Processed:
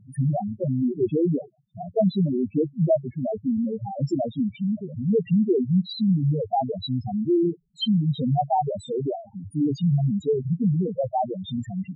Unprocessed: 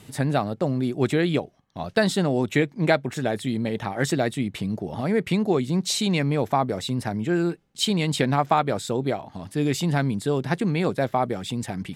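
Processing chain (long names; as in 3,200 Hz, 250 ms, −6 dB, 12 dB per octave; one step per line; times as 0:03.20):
0:02.36–0:03.91: low-pass filter 1,300 Hz 12 dB per octave
spectral peaks only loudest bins 2
level +4.5 dB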